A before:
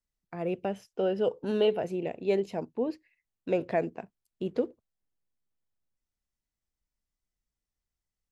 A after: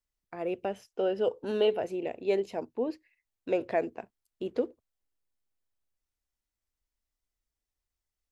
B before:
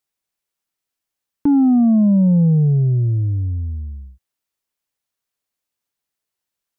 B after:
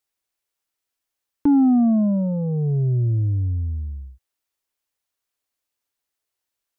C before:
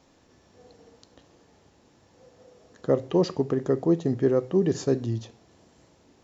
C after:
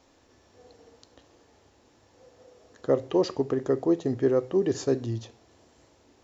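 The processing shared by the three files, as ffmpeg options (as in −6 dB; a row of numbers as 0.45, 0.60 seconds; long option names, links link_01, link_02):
-af "equalizer=frequency=170:width_type=o:width=0.58:gain=-11"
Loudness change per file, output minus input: −1.0, −4.5, −1.5 LU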